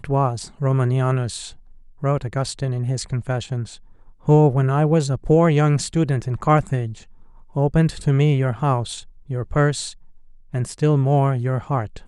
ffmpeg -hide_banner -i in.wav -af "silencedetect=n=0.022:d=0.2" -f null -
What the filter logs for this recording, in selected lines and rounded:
silence_start: 1.53
silence_end: 2.03 | silence_duration: 0.50
silence_start: 3.75
silence_end: 4.27 | silence_duration: 0.52
silence_start: 7.02
silence_end: 7.56 | silence_duration: 0.53
silence_start: 9.01
silence_end: 9.30 | silence_duration: 0.29
silence_start: 9.92
silence_end: 10.54 | silence_duration: 0.62